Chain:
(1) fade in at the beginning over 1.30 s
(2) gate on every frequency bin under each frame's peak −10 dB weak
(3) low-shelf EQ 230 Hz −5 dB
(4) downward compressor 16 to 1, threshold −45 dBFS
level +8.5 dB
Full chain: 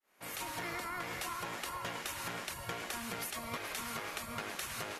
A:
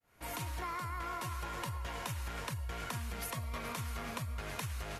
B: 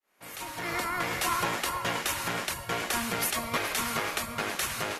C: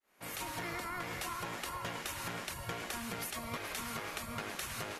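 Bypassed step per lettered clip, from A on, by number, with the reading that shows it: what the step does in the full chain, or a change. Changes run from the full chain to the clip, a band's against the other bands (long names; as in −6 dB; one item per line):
2, 125 Hz band +13.0 dB
4, average gain reduction 8.5 dB
3, 125 Hz band +3.5 dB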